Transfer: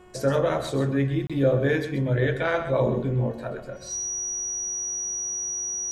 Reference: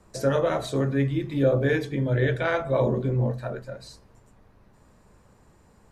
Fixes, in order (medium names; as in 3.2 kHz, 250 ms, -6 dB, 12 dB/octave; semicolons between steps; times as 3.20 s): de-hum 364.3 Hz, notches 9; band-stop 5.8 kHz, Q 30; interpolate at 1.27 s, 26 ms; inverse comb 131 ms -11 dB